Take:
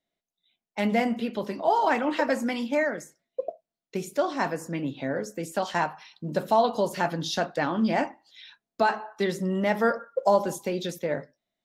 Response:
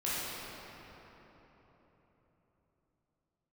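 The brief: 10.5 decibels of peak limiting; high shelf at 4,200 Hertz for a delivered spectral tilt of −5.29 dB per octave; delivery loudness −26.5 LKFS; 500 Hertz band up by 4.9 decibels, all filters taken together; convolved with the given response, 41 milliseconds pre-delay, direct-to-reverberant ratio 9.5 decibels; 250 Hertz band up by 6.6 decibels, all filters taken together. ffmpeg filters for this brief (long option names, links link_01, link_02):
-filter_complex "[0:a]equalizer=frequency=250:width_type=o:gain=7,equalizer=frequency=500:width_type=o:gain=4.5,highshelf=frequency=4200:gain=6.5,alimiter=limit=-16dB:level=0:latency=1,asplit=2[link_01][link_02];[1:a]atrim=start_sample=2205,adelay=41[link_03];[link_02][link_03]afir=irnorm=-1:irlink=0,volume=-17dB[link_04];[link_01][link_04]amix=inputs=2:normalize=0,volume=-0.5dB"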